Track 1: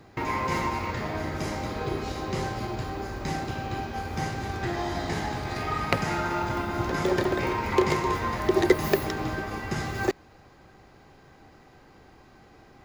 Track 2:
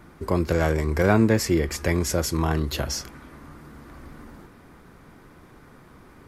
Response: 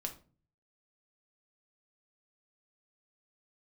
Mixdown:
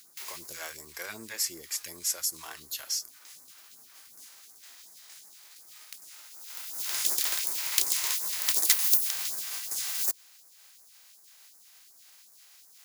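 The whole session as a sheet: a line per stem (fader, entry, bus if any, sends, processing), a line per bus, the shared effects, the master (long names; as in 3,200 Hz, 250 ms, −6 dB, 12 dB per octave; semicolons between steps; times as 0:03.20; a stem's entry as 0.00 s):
+2.5 dB, 0.00 s, no send, compressing power law on the bin magnitudes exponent 0.49; automatic ducking −18 dB, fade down 0.55 s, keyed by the second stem
+0.5 dB, 0.00 s, no send, no processing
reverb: not used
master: first difference; all-pass phaser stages 2, 2.7 Hz, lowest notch 100–2,900 Hz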